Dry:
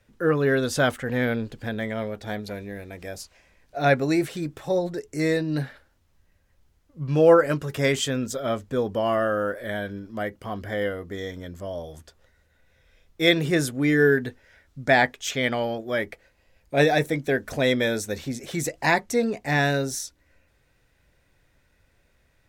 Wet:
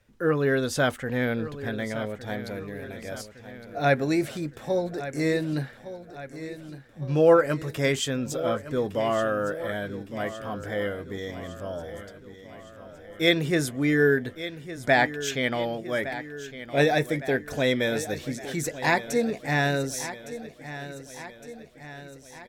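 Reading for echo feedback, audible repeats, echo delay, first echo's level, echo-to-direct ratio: 56%, 5, 1,161 ms, −13.5 dB, −12.0 dB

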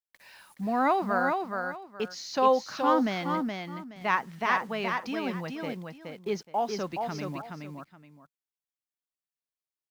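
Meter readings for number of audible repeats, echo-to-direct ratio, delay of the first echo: 2, −4.5 dB, 422 ms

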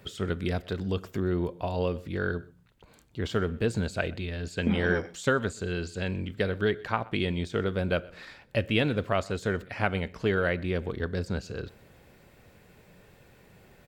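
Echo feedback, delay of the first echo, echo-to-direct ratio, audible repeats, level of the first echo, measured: repeats not evenly spaced, 126 ms, −23.5 dB, 1, −23.5 dB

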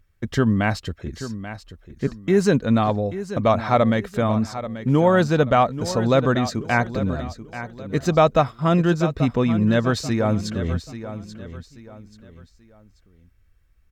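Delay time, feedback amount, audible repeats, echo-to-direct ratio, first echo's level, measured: 835 ms, 34%, 3, −12.0 dB, −12.5 dB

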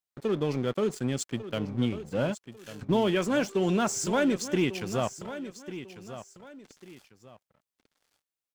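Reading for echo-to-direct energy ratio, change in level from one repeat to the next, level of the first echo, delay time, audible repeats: −12.5 dB, −10.0 dB, −13.0 dB, 1,146 ms, 2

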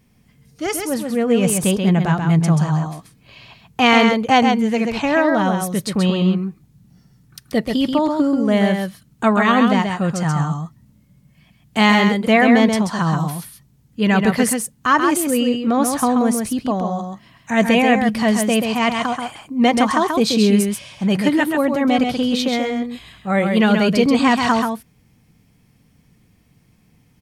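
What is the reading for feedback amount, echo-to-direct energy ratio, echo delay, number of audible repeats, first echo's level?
repeats not evenly spaced, −5.0 dB, 133 ms, 1, −5.0 dB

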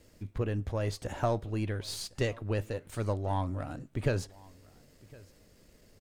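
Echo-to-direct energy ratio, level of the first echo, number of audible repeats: −23.5 dB, −23.5 dB, 1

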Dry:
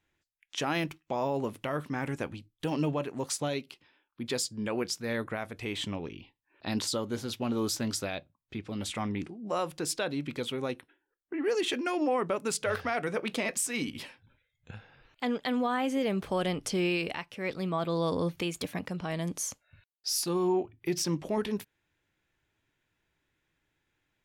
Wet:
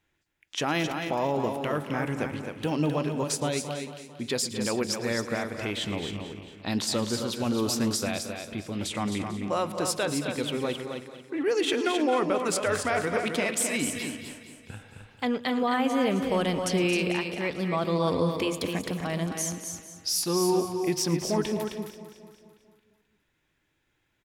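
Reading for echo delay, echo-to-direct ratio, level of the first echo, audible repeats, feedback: 111 ms, −4.5 dB, −18.0 dB, 12, repeats not evenly spaced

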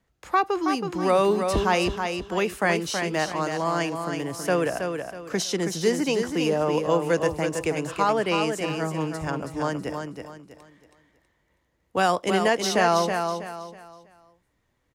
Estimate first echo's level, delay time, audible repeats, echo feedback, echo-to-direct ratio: −6.0 dB, 323 ms, 3, 32%, −5.5 dB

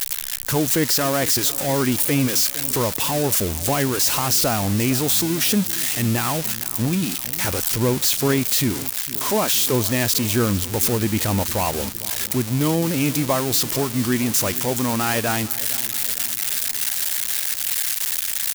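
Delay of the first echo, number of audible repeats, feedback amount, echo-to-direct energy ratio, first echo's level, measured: 458 ms, 4, 59%, −16.0 dB, −18.0 dB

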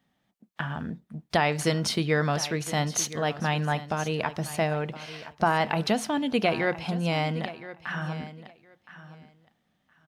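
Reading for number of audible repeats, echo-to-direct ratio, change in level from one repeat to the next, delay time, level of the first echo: 2, −15.0 dB, −16.0 dB, 1,017 ms, −15.0 dB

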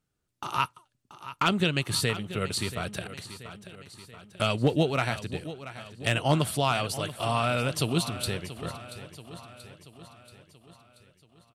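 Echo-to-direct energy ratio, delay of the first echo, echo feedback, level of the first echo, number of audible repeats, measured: −12.5 dB, 682 ms, 56%, −14.0 dB, 5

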